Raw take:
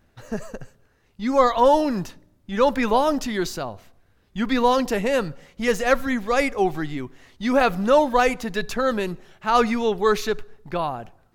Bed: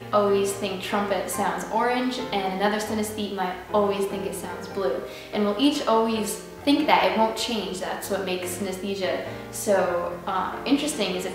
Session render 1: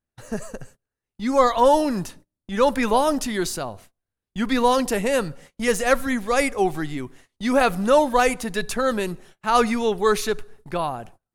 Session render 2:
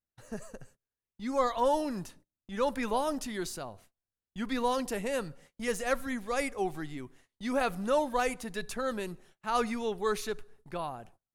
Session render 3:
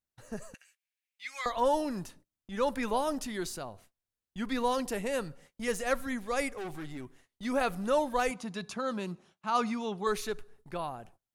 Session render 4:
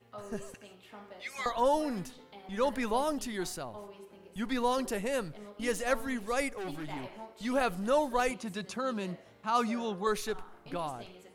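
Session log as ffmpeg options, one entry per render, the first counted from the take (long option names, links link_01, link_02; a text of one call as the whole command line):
ffmpeg -i in.wav -af "agate=range=-26dB:threshold=-45dB:ratio=16:detection=peak,equalizer=frequency=9600:width=1.6:gain=13" out.wav
ffmpeg -i in.wav -af "volume=-11dB" out.wav
ffmpeg -i in.wav -filter_complex "[0:a]asettb=1/sr,asplit=3[link_01][link_02][link_03];[link_01]atrim=end=0.544[link_04];[link_02]atrim=start=0.54:end=1.46,asetpts=PTS-STARTPTS,afade=type=in:duration=0.004:curve=qsin,afade=type=out:start_time=0.916:duration=0.004:curve=qsin,highpass=frequency=2300:width_type=q:width=3.9[link_05];[link_03]atrim=start=1.456[link_06];[link_04][link_05]acrossfade=duration=0.004:curve1=hsin:curve2=qsin[link_07];[link_07][link_06]acrossfade=duration=0.004:curve1=qsin:curve2=hsin,asettb=1/sr,asplit=3[link_08][link_09][link_10];[link_08]atrim=end=6.524[link_11];[link_09]atrim=start=6.52:end=7.45,asetpts=PTS-STARTPTS,afade=type=in:duration=0.004:curve=qsin,afade=type=out:start_time=0.926:duration=0.004:curve=qsin,asoftclip=type=hard:threshold=-36dB[link_12];[link_10]atrim=start=7.446[link_13];[link_11][link_12]acrossfade=duration=0.004:curve1=hsin:curve2=qsin[link_14];[link_14][link_13]acrossfade=duration=0.004:curve1=qsin:curve2=hsin,asettb=1/sr,asplit=3[link_15][link_16][link_17];[link_15]atrim=end=8.314[link_18];[link_16]atrim=start=8.31:end=10.07,asetpts=PTS-STARTPTS,afade=type=in:duration=0.004:curve=qsin,afade=type=out:start_time=1.756:duration=0.004:curve=qsin,highpass=120,equalizer=frequency=190:width_type=q:width=4:gain=6,equalizer=frequency=440:width_type=q:width=4:gain=-5,equalizer=frequency=1100:width_type=q:width=4:gain=4,equalizer=frequency=1800:width_type=q:width=4:gain=-6,equalizer=frequency=8200:width_type=q:width=4:gain=-7,lowpass=frequency=9100:width=0.5412,lowpass=frequency=9100:width=1.3066[link_19];[link_17]atrim=start=10.066[link_20];[link_18][link_19]acrossfade=duration=0.004:curve1=hsin:curve2=qsin[link_21];[link_21][link_20]acrossfade=duration=0.004:curve1=qsin:curve2=hsin" out.wav
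ffmpeg -i in.wav -i bed.wav -filter_complex "[1:a]volume=-25dB[link_01];[0:a][link_01]amix=inputs=2:normalize=0" out.wav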